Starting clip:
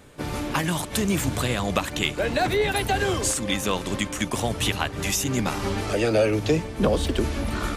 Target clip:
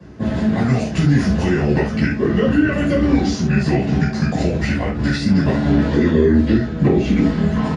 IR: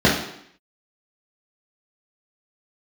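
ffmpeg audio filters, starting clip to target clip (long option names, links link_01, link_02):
-filter_complex "[0:a]acrossover=split=91|210|480[link_01][link_02][link_03][link_04];[link_01]acompressor=threshold=-34dB:ratio=4[link_05];[link_02]acompressor=threshold=-40dB:ratio=4[link_06];[link_03]acompressor=threshold=-30dB:ratio=4[link_07];[link_04]acompressor=threshold=-27dB:ratio=4[link_08];[link_05][link_06][link_07][link_08]amix=inputs=4:normalize=0,asetrate=32097,aresample=44100,atempo=1.37395[link_09];[1:a]atrim=start_sample=2205,atrim=end_sample=4410[link_10];[link_09][link_10]afir=irnorm=-1:irlink=0,volume=-16.5dB"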